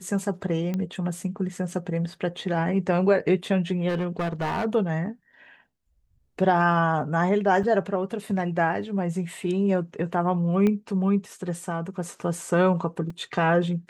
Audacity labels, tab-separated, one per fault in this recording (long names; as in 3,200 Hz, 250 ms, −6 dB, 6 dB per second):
0.740000	0.740000	click −17 dBFS
3.880000	4.660000	clipping −22.5 dBFS
7.630000	7.640000	drop-out 5.5 ms
10.670000	10.670000	click −14 dBFS
13.100000	13.100000	drop-out 3.4 ms